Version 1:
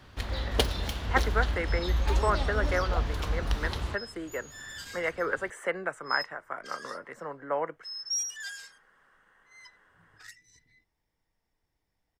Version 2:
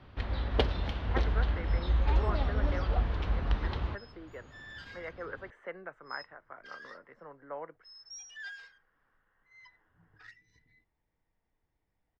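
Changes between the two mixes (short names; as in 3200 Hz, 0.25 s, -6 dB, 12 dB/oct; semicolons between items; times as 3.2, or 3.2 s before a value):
speech -10.0 dB; master: add air absorption 290 m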